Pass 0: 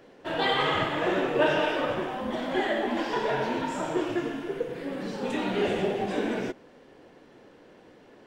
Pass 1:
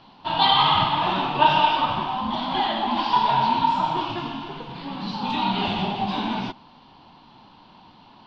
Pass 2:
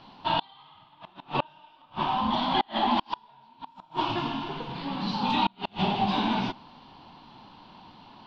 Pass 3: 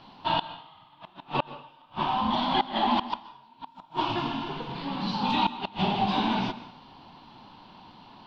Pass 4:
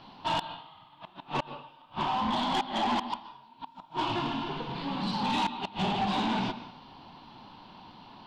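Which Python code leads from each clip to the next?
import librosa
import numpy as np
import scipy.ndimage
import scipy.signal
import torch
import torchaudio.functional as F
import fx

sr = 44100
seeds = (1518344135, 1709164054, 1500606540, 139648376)

y1 = fx.curve_eq(x, sr, hz=(210.0, 490.0, 920.0, 1800.0, 2900.0, 4400.0, 7600.0), db=(0, -20, 9, -12, 3, 7, -24))
y1 = F.gain(torch.from_numpy(y1), 6.5).numpy()
y2 = fx.gate_flip(y1, sr, shuts_db=-13.0, range_db=-35)
y3 = fx.rev_plate(y2, sr, seeds[0], rt60_s=0.52, hf_ratio=0.9, predelay_ms=115, drr_db=14.0)
y4 = 10.0 ** (-23.0 / 20.0) * np.tanh(y3 / 10.0 ** (-23.0 / 20.0))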